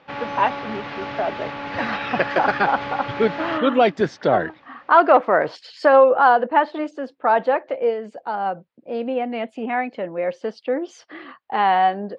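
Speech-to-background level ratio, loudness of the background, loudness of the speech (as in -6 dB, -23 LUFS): 9.5 dB, -30.0 LUFS, -20.5 LUFS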